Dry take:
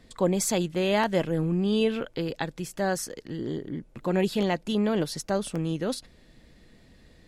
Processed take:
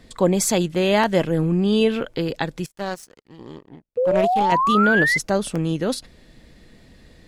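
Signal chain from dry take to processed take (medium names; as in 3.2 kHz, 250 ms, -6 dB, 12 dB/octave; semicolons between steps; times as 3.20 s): 2.66–4.52 s: power-law waveshaper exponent 2; 3.97–5.18 s: painted sound rise 480–2100 Hz -25 dBFS; trim +6 dB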